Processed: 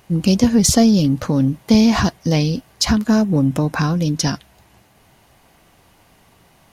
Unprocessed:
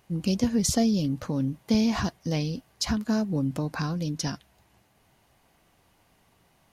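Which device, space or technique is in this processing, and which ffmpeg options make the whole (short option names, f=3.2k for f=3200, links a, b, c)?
parallel distortion: -filter_complex "[0:a]asettb=1/sr,asplit=3[a][b][c];[a]atrim=end=3.064[d];[b]atrim=start=3.06:end=4.06,asetpts=PTS-STARTPTS,afade=t=in:d=0.004:c=qsin,afade=t=out:st=0.996:d=0.004:c=qsin,bandreject=f=4.5k:w=5.3[e];[c]atrim=start=4.056[f];[d][e]acrossfade=d=0.004:c1=hsin:c2=qsin[g];[g][f]acrossfade=d=0.004:c1=qsin:c2=hsin,asplit=2[h][i];[i]asoftclip=type=hard:threshold=-23dB,volume=-11.5dB[j];[h][j]amix=inputs=2:normalize=0,volume=9dB"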